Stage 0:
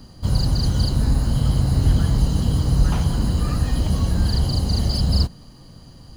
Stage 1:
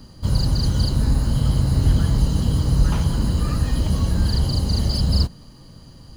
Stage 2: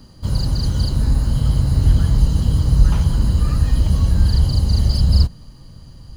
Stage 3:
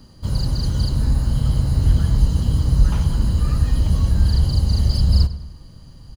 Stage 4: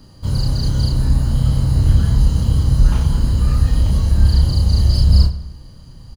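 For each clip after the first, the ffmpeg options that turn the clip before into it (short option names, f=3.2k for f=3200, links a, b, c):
-af "bandreject=f=730:w=12"
-af "asubboost=boost=2:cutoff=160,volume=-1dB"
-filter_complex "[0:a]asplit=2[a][b];[b]adelay=100,lowpass=f=4.7k:p=1,volume=-14.5dB,asplit=2[c][d];[d]adelay=100,lowpass=f=4.7k:p=1,volume=0.5,asplit=2[e][f];[f]adelay=100,lowpass=f=4.7k:p=1,volume=0.5,asplit=2[g][h];[h]adelay=100,lowpass=f=4.7k:p=1,volume=0.5,asplit=2[i][j];[j]adelay=100,lowpass=f=4.7k:p=1,volume=0.5[k];[a][c][e][g][i][k]amix=inputs=6:normalize=0,volume=-2dB"
-filter_complex "[0:a]asplit=2[a][b];[b]adelay=31,volume=-3.5dB[c];[a][c]amix=inputs=2:normalize=0,volume=1dB"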